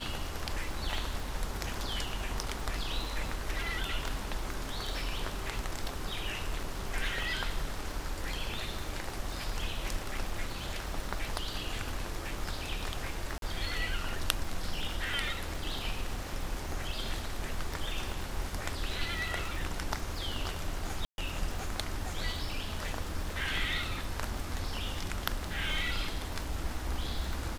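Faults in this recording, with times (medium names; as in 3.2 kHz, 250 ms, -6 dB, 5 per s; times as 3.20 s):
crackle 160 per s -40 dBFS
13.38–13.42 s: dropout 42 ms
21.05–21.18 s: dropout 131 ms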